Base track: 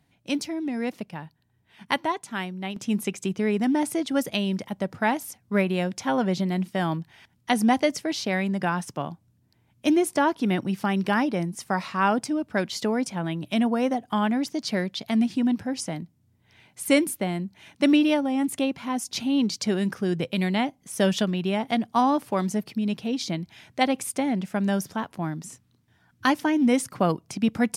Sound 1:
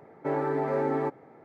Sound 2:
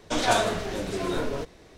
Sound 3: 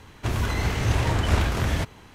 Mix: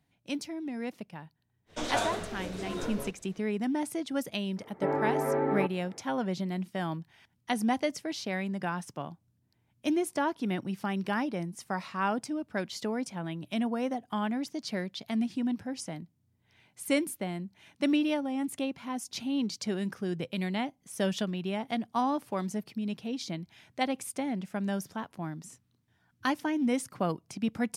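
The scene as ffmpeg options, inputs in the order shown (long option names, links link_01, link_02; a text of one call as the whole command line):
ffmpeg -i bed.wav -i cue0.wav -i cue1.wav -filter_complex "[0:a]volume=-7.5dB[link_01];[1:a]lowpass=frequency=3400:width=0.5412,lowpass=frequency=3400:width=1.3066[link_02];[2:a]atrim=end=1.77,asetpts=PTS-STARTPTS,volume=-8dB,afade=type=in:duration=0.05,afade=type=out:start_time=1.72:duration=0.05,adelay=1660[link_03];[link_02]atrim=end=1.44,asetpts=PTS-STARTPTS,volume=-1dB,afade=type=in:duration=0.004:curve=hsin,afade=type=out:start_time=1.436:duration=0.004:curve=hsin,adelay=201537S[link_04];[link_01][link_03][link_04]amix=inputs=3:normalize=0" out.wav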